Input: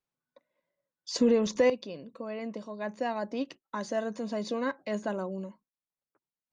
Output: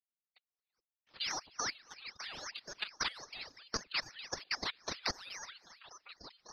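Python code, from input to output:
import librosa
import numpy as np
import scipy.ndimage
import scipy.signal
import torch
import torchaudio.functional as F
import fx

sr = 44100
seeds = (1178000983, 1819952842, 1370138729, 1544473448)

y = fx.law_mismatch(x, sr, coded='A')
y = fx.freq_invert(y, sr, carrier_hz=3900)
y = fx.transient(y, sr, attack_db=4, sustain_db=-10)
y = fx.dynamic_eq(y, sr, hz=1100.0, q=0.95, threshold_db=-43.0, ratio=4.0, max_db=-4)
y = fx.spec_gate(y, sr, threshold_db=-10, keep='weak')
y = fx.level_steps(y, sr, step_db=14)
y = fx.high_shelf(y, sr, hz=2200.0, db=12.0)
y = fx.echo_stepped(y, sr, ms=395, hz=590.0, octaves=0.7, feedback_pct=70, wet_db=-10.5)
y = fx.rev_gated(y, sr, seeds[0], gate_ms=450, shape='rising', drr_db=11.5)
y = fx.dereverb_blind(y, sr, rt60_s=1.3)
y = fx.rider(y, sr, range_db=4, speed_s=0.5)
y = fx.ring_lfo(y, sr, carrier_hz=1500.0, swing_pct=65, hz=3.7)
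y = y * librosa.db_to_amplitude(4.0)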